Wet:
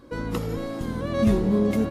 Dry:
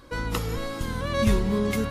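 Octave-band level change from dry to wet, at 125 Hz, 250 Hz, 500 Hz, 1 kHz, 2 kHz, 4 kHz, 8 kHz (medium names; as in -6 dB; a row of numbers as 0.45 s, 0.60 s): 0.0 dB, +4.5 dB, +2.0 dB, -2.5 dB, -5.0 dB, -6.5 dB, -6.5 dB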